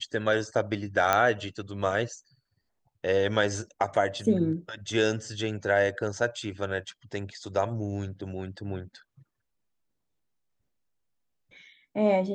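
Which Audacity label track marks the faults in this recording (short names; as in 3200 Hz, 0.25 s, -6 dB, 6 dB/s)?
1.130000	1.130000	pop -9 dBFS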